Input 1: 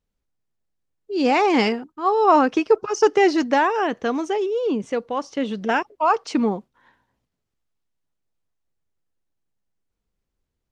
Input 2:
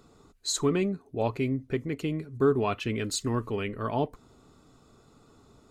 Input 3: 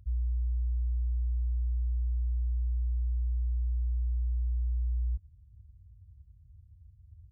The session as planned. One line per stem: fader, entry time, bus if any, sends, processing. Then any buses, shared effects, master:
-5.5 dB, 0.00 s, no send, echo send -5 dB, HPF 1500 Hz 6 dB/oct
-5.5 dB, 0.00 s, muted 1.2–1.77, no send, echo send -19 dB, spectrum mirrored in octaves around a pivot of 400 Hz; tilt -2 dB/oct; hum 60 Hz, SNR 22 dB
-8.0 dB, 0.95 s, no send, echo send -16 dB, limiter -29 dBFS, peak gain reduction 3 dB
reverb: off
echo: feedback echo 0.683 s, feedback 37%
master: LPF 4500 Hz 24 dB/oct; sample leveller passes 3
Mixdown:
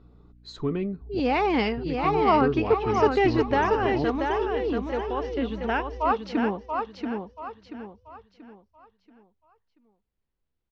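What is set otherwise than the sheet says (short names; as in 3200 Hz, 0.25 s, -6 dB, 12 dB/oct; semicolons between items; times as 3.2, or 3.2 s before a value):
stem 1: missing HPF 1500 Hz 6 dB/oct; stem 2: missing spectrum mirrored in octaves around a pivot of 400 Hz; master: missing sample leveller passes 3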